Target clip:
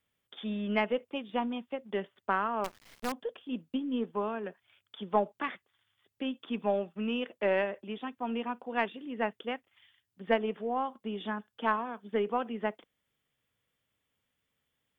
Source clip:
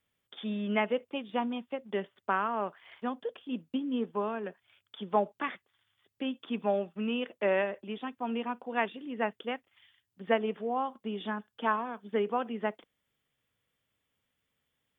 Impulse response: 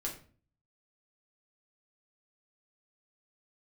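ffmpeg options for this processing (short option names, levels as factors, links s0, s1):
-filter_complex "[0:a]aeval=exprs='0.237*(cos(1*acos(clip(val(0)/0.237,-1,1)))-cos(1*PI/2))+0.0188*(cos(2*acos(clip(val(0)/0.237,-1,1)))-cos(2*PI/2))+0.00473*(cos(3*acos(clip(val(0)/0.237,-1,1)))-cos(3*PI/2))':c=same,asettb=1/sr,asplit=3[s0][s1][s2];[s0]atrim=end=2.644[s3];[s1]atrim=start=2.64:end=3.12,asetpts=PTS-STARTPTS,afade=t=in:d=0.004:c=qsin,afade=t=out:st=0.476:d=0.004:c=qsin,acrusher=bits=6:dc=4:mix=0:aa=0.000001[s4];[s2]atrim=start=3.116[s5];[s3][s4]acrossfade=d=0.004:c1=hsin:c2=qsin[s6];[s6][s5]acrossfade=d=0.004:c1=qsin:c2=hsin"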